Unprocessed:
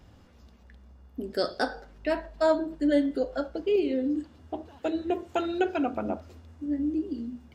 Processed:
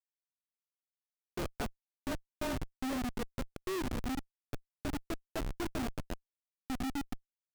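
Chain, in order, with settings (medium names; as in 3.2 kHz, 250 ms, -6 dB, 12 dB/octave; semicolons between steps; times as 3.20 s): frequency shift -32 Hz; cabinet simulation 160–6100 Hz, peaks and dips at 170 Hz -5 dB, 540 Hz -7 dB, 2.5 kHz +4 dB; Schmitt trigger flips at -26 dBFS; trim -3 dB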